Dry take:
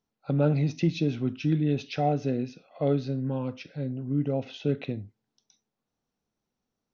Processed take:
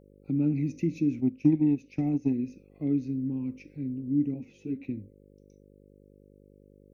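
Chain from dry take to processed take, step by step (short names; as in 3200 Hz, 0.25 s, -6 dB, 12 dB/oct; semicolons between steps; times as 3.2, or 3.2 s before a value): EQ curve 160 Hz 0 dB, 300 Hz +10 dB, 530 Hz -16 dB, 990 Hz -13 dB, 1500 Hz -18 dB, 2300 Hz +3 dB, 3300 Hz -18 dB, 5100 Hz -8 dB, 8600 Hz +14 dB; buzz 50 Hz, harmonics 11, -51 dBFS -1 dB/oct; 1.2–2.33 transient shaper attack +7 dB, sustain -7 dB; 4.34–4.89 ensemble effect; gain -6 dB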